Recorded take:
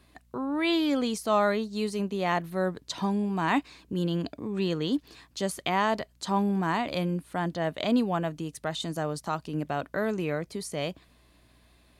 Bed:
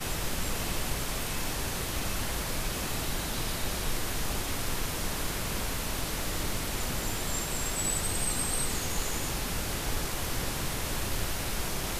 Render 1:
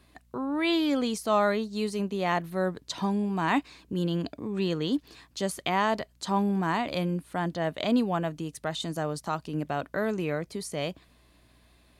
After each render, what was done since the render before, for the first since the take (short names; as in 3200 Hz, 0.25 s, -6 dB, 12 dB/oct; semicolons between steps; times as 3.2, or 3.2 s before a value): nothing audible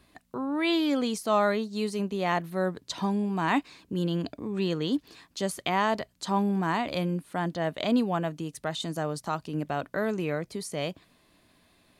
de-hum 60 Hz, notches 2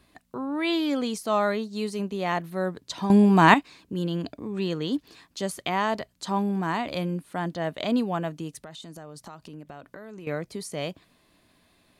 3.1–3.54 gain +11.5 dB; 8.58–10.27 compressor, threshold -39 dBFS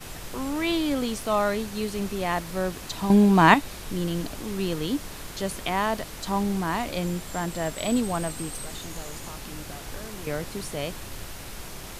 add bed -6.5 dB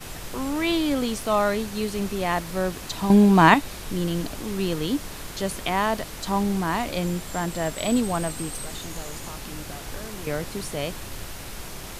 gain +2 dB; limiter -3 dBFS, peak gain reduction 3 dB